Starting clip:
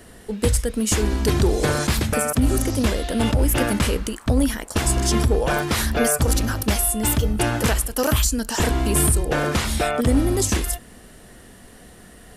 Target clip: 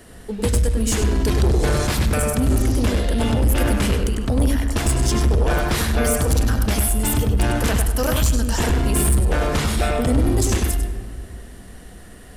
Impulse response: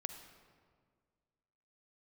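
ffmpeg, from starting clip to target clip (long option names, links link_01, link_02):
-filter_complex "[0:a]asplit=2[link_01][link_02];[link_02]highshelf=frequency=5200:gain=-7.5[link_03];[1:a]atrim=start_sample=2205,lowshelf=frequency=120:gain=11,adelay=99[link_04];[link_03][link_04]afir=irnorm=-1:irlink=0,volume=-2dB[link_05];[link_01][link_05]amix=inputs=2:normalize=0,asoftclip=type=tanh:threshold=-11.5dB"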